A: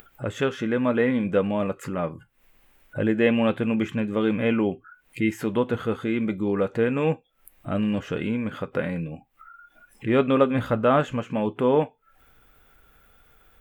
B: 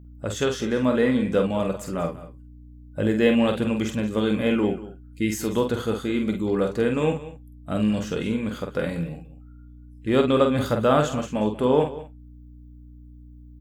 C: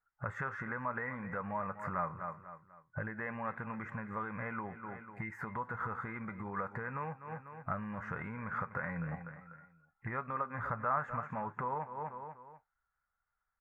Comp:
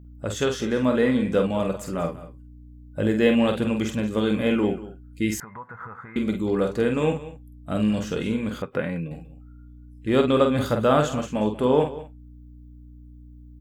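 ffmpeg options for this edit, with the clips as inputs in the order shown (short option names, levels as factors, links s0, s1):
-filter_complex "[1:a]asplit=3[s0][s1][s2];[s0]atrim=end=5.402[s3];[2:a]atrim=start=5.398:end=6.162[s4];[s1]atrim=start=6.158:end=8.622[s5];[0:a]atrim=start=8.618:end=9.112[s6];[s2]atrim=start=9.108[s7];[s3][s4]acrossfade=d=0.004:c1=hsin:c2=hsin[s8];[s8][s5]acrossfade=d=0.004:c1=hsin:c2=hsin[s9];[s9][s6]acrossfade=d=0.004:c1=hsin:c2=hsin[s10];[s10][s7]acrossfade=d=0.004:c1=hsin:c2=hsin"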